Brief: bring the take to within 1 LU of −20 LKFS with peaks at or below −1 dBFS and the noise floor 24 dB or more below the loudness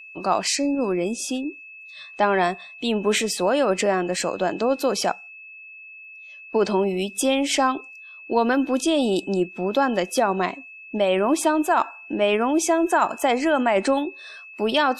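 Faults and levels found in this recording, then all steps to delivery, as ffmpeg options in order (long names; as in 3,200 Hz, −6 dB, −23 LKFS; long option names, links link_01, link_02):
interfering tone 2,600 Hz; level of the tone −40 dBFS; integrated loudness −22.5 LKFS; sample peak −7.0 dBFS; target loudness −20.0 LKFS
→ -af "bandreject=frequency=2600:width=30"
-af "volume=2.5dB"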